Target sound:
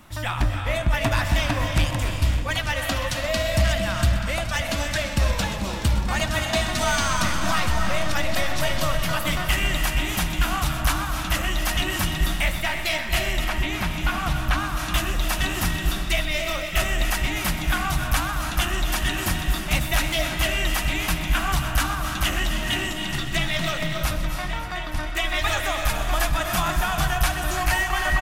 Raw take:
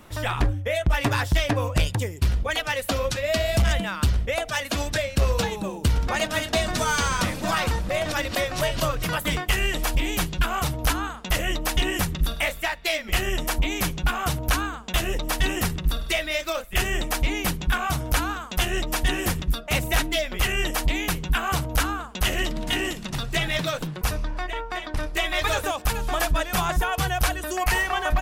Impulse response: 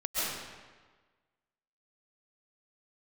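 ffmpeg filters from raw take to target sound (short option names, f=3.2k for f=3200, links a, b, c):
-filter_complex "[0:a]equalizer=f=450:w=3.1:g=-13,aecho=1:1:75|562|882:0.106|0.141|0.168,asplit=2[a][b];[1:a]atrim=start_sample=2205,adelay=127[c];[b][c]afir=irnorm=-1:irlink=0,volume=-12dB[d];[a][d]amix=inputs=2:normalize=0,asettb=1/sr,asplit=3[e][f][g];[e]atrim=end=13.444[h];[f]atrim=start=13.44:end=14.77,asetpts=PTS-STARTPTS,afade=t=in:d=0.004:c=qsin,afade=t=out:st=1.326:d=0.004:c=qsin,acrossover=split=4000[i][j];[j]acompressor=threshold=-40dB:ratio=4:attack=1:release=60[k];[i][k]amix=inputs=2:normalize=0[l];[g]atrim=start=14.766[m];[h][l]acrossfade=d=0.004:c1=hsin:c2=qsin[n];[n][m]acrossfade=d=0.004:c1=qsin:c2=hsin"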